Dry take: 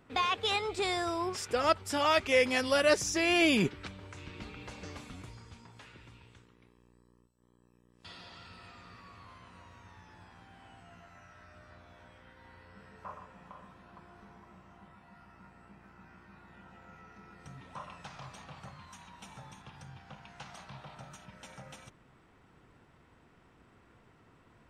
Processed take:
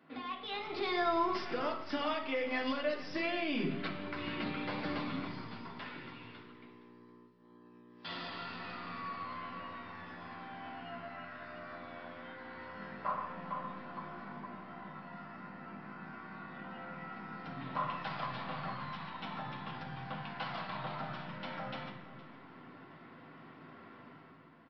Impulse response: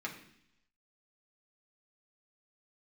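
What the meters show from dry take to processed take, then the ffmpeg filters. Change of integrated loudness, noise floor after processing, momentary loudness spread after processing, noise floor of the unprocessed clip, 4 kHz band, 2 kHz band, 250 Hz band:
-10.5 dB, -58 dBFS, 19 LU, -64 dBFS, -7.0 dB, -5.0 dB, -2.5 dB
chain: -filter_complex "[0:a]highpass=190,equalizer=f=1700:t=o:w=0.35:g=-4,acompressor=threshold=0.0158:ratio=4,alimiter=level_in=3.35:limit=0.0631:level=0:latency=1:release=301,volume=0.299,dynaudnorm=f=100:g=11:m=2.66,aeval=exprs='0.0501*(cos(1*acos(clip(val(0)/0.0501,-1,1)))-cos(1*PI/2))+0.00158*(cos(6*acos(clip(val(0)/0.0501,-1,1)))-cos(6*PI/2))':c=same,aecho=1:1:465:0.126[s0];[1:a]atrim=start_sample=2205,asetrate=36603,aresample=44100[s1];[s0][s1]afir=irnorm=-1:irlink=0,aresample=11025,aresample=44100,volume=0.891"

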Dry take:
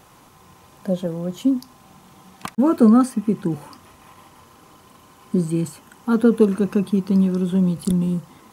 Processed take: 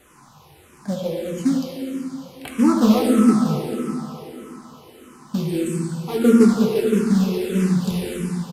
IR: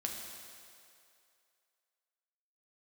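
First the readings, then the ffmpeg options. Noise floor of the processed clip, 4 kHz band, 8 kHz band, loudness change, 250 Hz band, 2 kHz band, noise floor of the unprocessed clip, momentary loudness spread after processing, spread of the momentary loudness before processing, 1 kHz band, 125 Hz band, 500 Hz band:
-50 dBFS, no reading, +4.5 dB, 0.0 dB, +1.0 dB, +5.0 dB, -51 dBFS, 17 LU, 14 LU, +1.5 dB, -1.0 dB, +1.5 dB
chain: -filter_complex "[0:a]acrossover=split=580|1700[s0][s1][s2];[s0]acrusher=bits=4:mode=log:mix=0:aa=0.000001[s3];[s3][s1][s2]amix=inputs=3:normalize=0[s4];[1:a]atrim=start_sample=2205,asetrate=29547,aresample=44100[s5];[s4][s5]afir=irnorm=-1:irlink=0,aresample=32000,aresample=44100,asplit=2[s6][s7];[s7]afreqshift=-1.6[s8];[s6][s8]amix=inputs=2:normalize=1"

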